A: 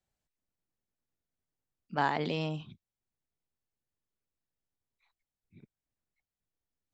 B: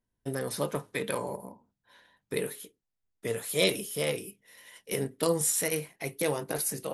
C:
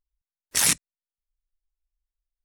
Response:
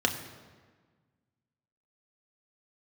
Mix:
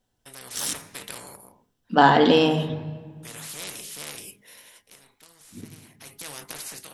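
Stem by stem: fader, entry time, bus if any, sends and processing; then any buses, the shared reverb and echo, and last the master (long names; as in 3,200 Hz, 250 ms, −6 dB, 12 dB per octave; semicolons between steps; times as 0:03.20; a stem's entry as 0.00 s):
+2.0 dB, 0.00 s, send −4.5 dB, no processing
−12.5 dB, 0.00 s, no send, every bin compressed towards the loudest bin 4 to 1; automatic ducking −16 dB, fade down 0.65 s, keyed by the first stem
−16.0 dB, 0.00 s, send −13 dB, no processing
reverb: on, RT60 1.5 s, pre-delay 3 ms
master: hum removal 205.8 Hz, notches 11; automatic gain control gain up to 6 dB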